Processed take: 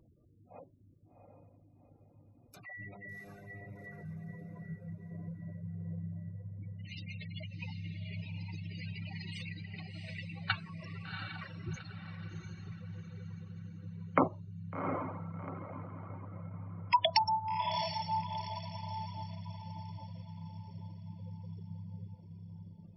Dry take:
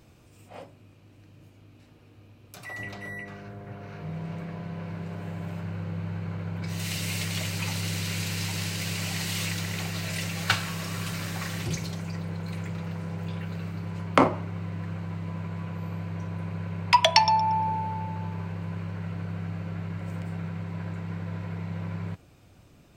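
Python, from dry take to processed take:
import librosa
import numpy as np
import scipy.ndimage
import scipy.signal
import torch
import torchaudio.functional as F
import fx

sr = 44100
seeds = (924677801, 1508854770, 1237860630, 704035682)

y = fx.spec_gate(x, sr, threshold_db=-15, keep='strong')
y = fx.echo_diffused(y, sr, ms=750, feedback_pct=42, wet_db=-4.5)
y = fx.dereverb_blind(y, sr, rt60_s=0.65)
y = F.gain(torch.from_numpy(y), -7.5).numpy()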